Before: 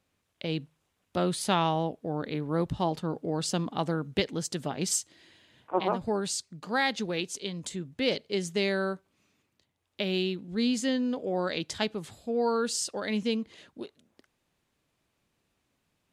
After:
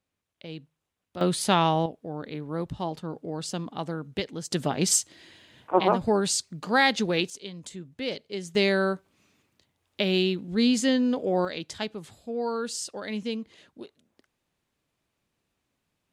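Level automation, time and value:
−8 dB
from 0:01.21 +4 dB
from 0:01.86 −3 dB
from 0:04.51 +6 dB
from 0:07.30 −4 dB
from 0:08.55 +5 dB
from 0:11.45 −2.5 dB

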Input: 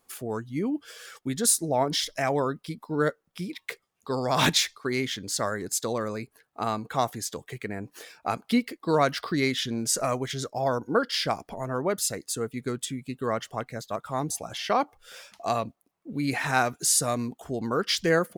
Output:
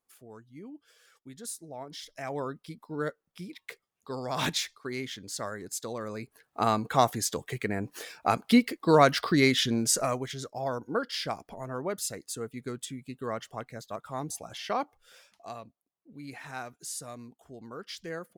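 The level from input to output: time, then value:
0:01.91 −17 dB
0:02.42 −7.5 dB
0:05.97 −7.5 dB
0:06.60 +3 dB
0:09.73 +3 dB
0:10.37 −6 dB
0:14.80 −6 dB
0:15.59 −15.5 dB

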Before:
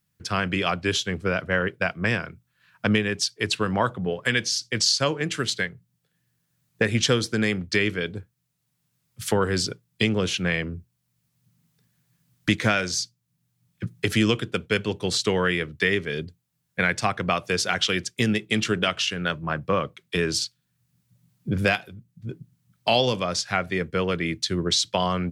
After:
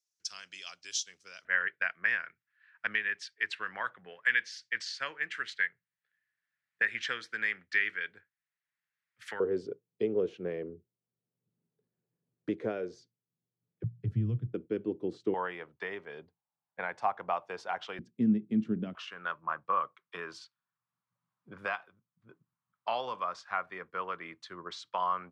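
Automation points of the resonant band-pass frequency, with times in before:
resonant band-pass, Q 3.7
5,900 Hz
from 0:01.45 1,800 Hz
from 0:09.40 420 Hz
from 0:13.84 120 Hz
from 0:14.54 320 Hz
from 0:15.34 860 Hz
from 0:17.99 230 Hz
from 0:18.95 1,100 Hz

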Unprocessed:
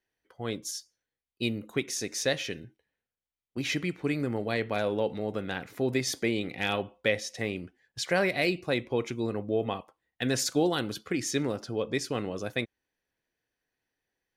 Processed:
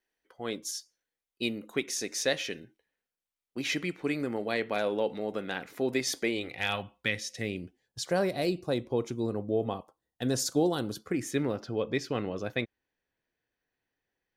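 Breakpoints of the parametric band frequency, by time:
parametric band −13 dB 1.1 octaves
0:06.17 100 Hz
0:06.82 380 Hz
0:07.99 2,200 Hz
0:10.93 2,200 Hz
0:11.59 9,500 Hz

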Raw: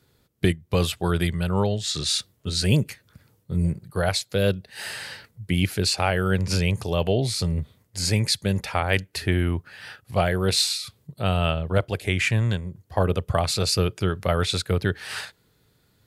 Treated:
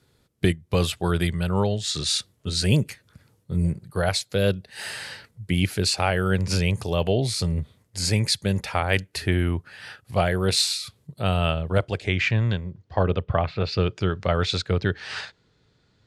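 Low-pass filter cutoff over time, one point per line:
low-pass filter 24 dB per octave
0:11.71 12,000 Hz
0:12.23 5,200 Hz
0:13.04 5,200 Hz
0:13.55 2,400 Hz
0:13.91 6,400 Hz

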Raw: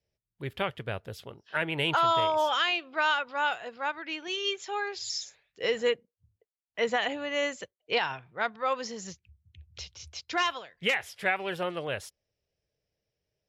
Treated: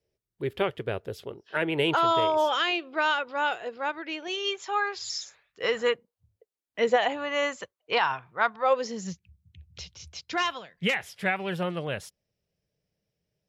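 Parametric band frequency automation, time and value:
parametric band +10 dB 0.91 octaves
0:03.96 390 Hz
0:04.75 1,200 Hz
0:05.92 1,200 Hz
0:06.79 250 Hz
0:07.13 1,100 Hz
0:08.51 1,100 Hz
0:09.09 180 Hz

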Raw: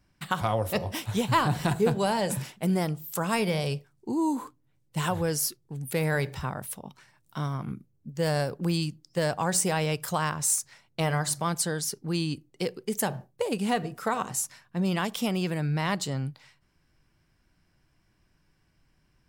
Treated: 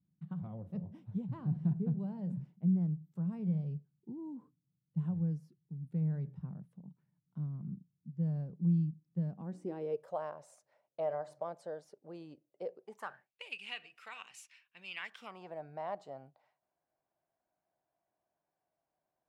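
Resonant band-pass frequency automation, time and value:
resonant band-pass, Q 5.7
0:09.27 170 Hz
0:10.13 600 Hz
0:12.80 600 Hz
0:13.32 2,600 Hz
0:14.94 2,600 Hz
0:15.54 680 Hz

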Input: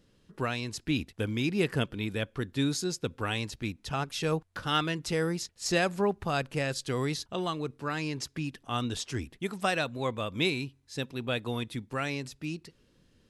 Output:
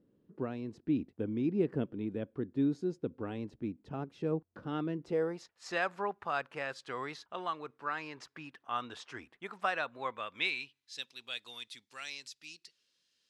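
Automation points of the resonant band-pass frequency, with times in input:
resonant band-pass, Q 1.2
0:04.96 300 Hz
0:05.55 1,200 Hz
0:10.02 1,200 Hz
0:11.12 4,900 Hz

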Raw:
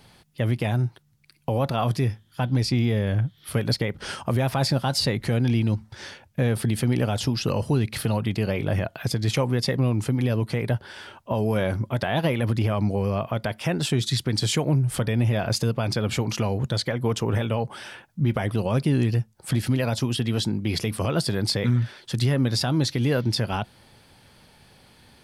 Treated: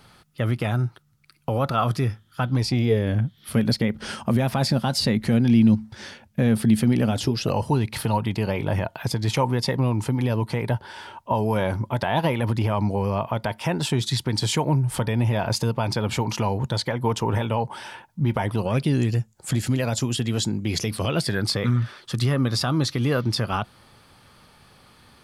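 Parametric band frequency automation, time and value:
parametric band +12 dB 0.28 octaves
0:02.51 1,300 Hz
0:03.18 220 Hz
0:07.09 220 Hz
0:07.61 920 Hz
0:18.59 920 Hz
0:18.99 7,100 Hz
0:20.75 7,100 Hz
0:21.47 1,200 Hz

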